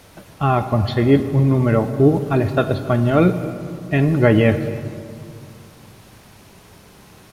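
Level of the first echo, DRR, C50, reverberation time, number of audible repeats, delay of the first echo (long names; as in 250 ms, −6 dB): −21.5 dB, 9.0 dB, 10.5 dB, 2.3 s, 1, 271 ms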